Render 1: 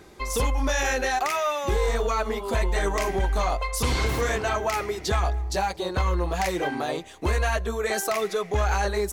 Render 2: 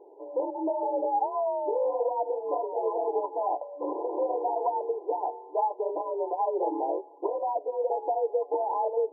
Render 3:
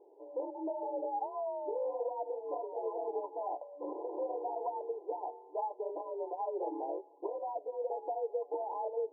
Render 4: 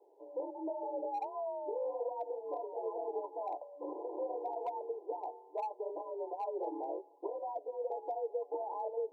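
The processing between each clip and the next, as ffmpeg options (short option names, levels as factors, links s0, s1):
-af "afftfilt=real='re*between(b*sr/4096,240,980)':imag='im*between(b*sr/4096,240,980)':win_size=4096:overlap=0.75,afreqshift=50"
-af "lowpass=1000,volume=0.398"
-filter_complex "[0:a]acrossover=split=430|560[s0][s1][s2];[s0]agate=range=0.0224:threshold=0.00112:ratio=3:detection=peak[s3];[s2]volume=47.3,asoftclip=hard,volume=0.0211[s4];[s3][s1][s4]amix=inputs=3:normalize=0,volume=0.841"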